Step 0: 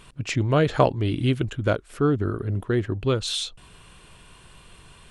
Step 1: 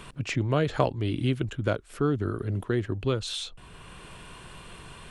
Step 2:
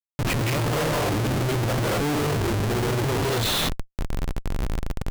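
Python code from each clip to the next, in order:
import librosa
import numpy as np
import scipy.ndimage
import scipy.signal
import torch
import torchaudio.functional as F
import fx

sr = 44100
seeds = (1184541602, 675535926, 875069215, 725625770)

y1 = fx.band_squash(x, sr, depth_pct=40)
y1 = y1 * 10.0 ** (-4.0 / 20.0)
y2 = fx.rev_gated(y1, sr, seeds[0], gate_ms=260, shape='rising', drr_db=-5.0)
y2 = fx.schmitt(y2, sr, flips_db=-31.0)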